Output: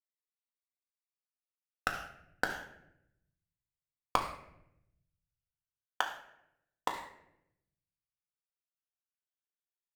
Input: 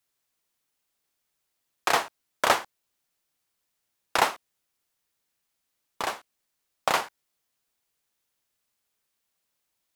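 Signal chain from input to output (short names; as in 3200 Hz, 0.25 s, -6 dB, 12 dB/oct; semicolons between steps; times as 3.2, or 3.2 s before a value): moving spectral ripple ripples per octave 1, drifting +0.29 Hz, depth 21 dB; HPF 890 Hz 6 dB/oct; gate with hold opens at -42 dBFS; bell 1400 Hz +7.5 dB 2 oct; sample leveller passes 5; flipped gate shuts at -15 dBFS, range -38 dB; reverb RT60 0.80 s, pre-delay 4 ms, DRR 1.5 dB; gain -5.5 dB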